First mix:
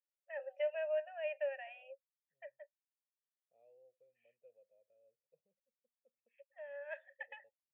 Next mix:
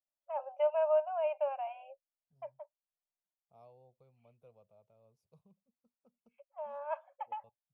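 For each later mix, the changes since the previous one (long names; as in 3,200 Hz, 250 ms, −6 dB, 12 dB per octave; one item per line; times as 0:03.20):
first voice: add moving average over 24 samples
master: remove formant filter e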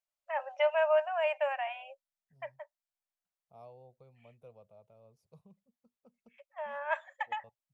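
first voice: remove moving average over 24 samples
second voice +6.5 dB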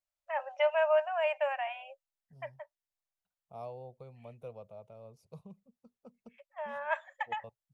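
second voice +9.0 dB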